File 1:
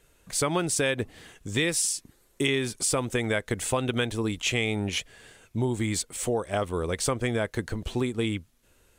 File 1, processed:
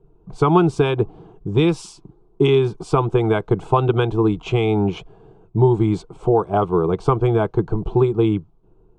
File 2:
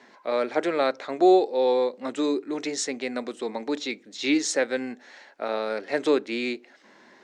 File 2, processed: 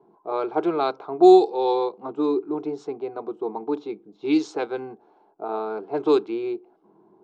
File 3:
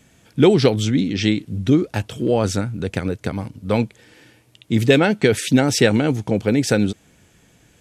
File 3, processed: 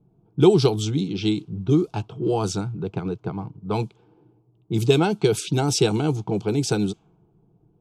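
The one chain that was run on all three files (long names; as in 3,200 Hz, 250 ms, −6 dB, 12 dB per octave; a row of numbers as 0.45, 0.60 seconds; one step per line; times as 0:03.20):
low-pass that shuts in the quiet parts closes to 500 Hz, open at −13 dBFS
phaser with its sweep stopped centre 370 Hz, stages 8
normalise the peak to −3 dBFS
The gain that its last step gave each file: +14.5, +5.5, −0.5 decibels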